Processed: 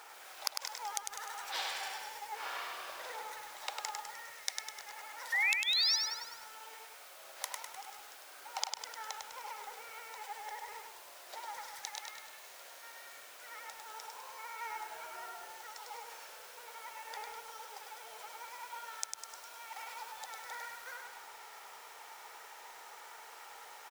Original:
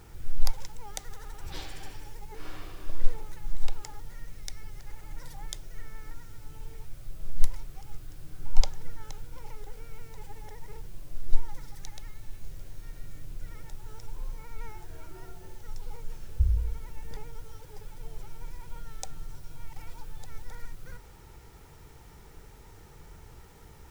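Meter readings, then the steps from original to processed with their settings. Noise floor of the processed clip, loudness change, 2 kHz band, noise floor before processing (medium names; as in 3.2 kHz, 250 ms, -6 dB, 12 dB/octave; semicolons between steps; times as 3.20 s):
-53 dBFS, +2.5 dB, +13.0 dB, -51 dBFS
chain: high-pass 660 Hz 24 dB/octave; treble shelf 4.4 kHz -5.5 dB; crackle 430 per s -65 dBFS; painted sound rise, 5.32–5.96 s, 1.8–5.9 kHz -38 dBFS; inverted gate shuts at -22 dBFS, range -38 dB; on a send: feedback delay 101 ms, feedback 41%, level -4.5 dB; on the sum: bit-crushed delay 204 ms, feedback 35%, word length 9-bit, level -13.5 dB; trim +7.5 dB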